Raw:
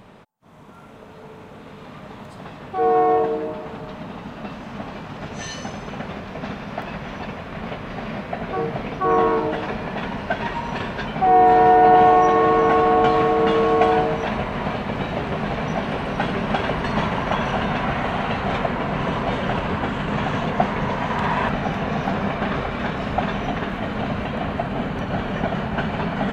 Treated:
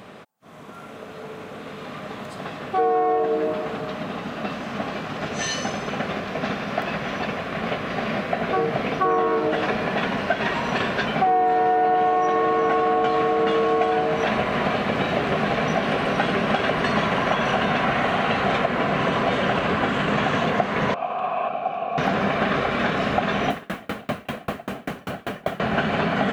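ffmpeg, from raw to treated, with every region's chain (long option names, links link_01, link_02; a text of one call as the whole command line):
ffmpeg -i in.wav -filter_complex "[0:a]asettb=1/sr,asplit=3[link_01][link_02][link_03];[link_01]atrim=end=20.944[link_04];[link_02]atrim=start=20.94:end=21.98,asetpts=PTS-STARTPTS,afade=type=in:duration=0.004:curve=qsin,afade=type=out:start_time=1.036:duration=0.004:curve=qsin,asplit=3[link_05][link_06][link_07];[link_05]bandpass=frequency=730:width_type=q:width=8,volume=0dB[link_08];[link_06]bandpass=frequency=1090:width_type=q:width=8,volume=-6dB[link_09];[link_07]bandpass=frequency=2440:width_type=q:width=8,volume=-9dB[link_10];[link_08][link_09][link_10]amix=inputs=3:normalize=0,lowshelf=frequency=270:gain=9.5[link_11];[link_03]atrim=start=21.976[link_12];[link_04][link_11]acrossfade=duration=0.004:curve1=hsin:curve2=qsin[link_13];[link_13][link_12]acrossfade=duration=0.004:curve1=qsin:curve2=hsin,asettb=1/sr,asplit=3[link_14][link_15][link_16];[link_14]atrim=end=23.504[link_17];[link_15]atrim=start=23.5:end=25.6,asetpts=PTS-STARTPTS,afade=type=in:duration=0.004:curve=qsin,afade=type=out:start_time=2.096:duration=0.004:curve=qsin,acrusher=bits=6:mix=0:aa=0.5,aeval=exprs='val(0)*pow(10,-33*if(lt(mod(5.1*n/s,1),2*abs(5.1)/1000),1-mod(5.1*n/s,1)/(2*abs(5.1)/1000),(mod(5.1*n/s,1)-2*abs(5.1)/1000)/(1-2*abs(5.1)/1000))/20)':channel_layout=same[link_18];[link_16]atrim=start=25.596[link_19];[link_17][link_18]acrossfade=duration=0.004:curve1=hsin:curve2=qsin[link_20];[link_20][link_19]acrossfade=duration=0.004:curve1=qsin:curve2=hsin,highpass=frequency=260:poles=1,bandreject=frequency=910:width=6.3,acompressor=threshold=-24dB:ratio=6,volume=6.5dB" out.wav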